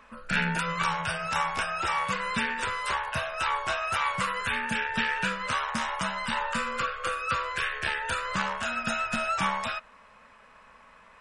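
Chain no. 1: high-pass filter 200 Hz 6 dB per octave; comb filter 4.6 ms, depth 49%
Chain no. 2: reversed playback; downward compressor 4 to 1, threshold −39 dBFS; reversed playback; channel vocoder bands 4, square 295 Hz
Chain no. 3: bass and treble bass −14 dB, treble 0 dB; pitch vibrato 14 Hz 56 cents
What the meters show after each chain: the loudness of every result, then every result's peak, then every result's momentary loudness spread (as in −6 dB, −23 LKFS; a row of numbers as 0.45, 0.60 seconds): −27.5, −41.0, −29.0 LKFS; −12.0, −28.0, −12.5 dBFS; 3, 8, 3 LU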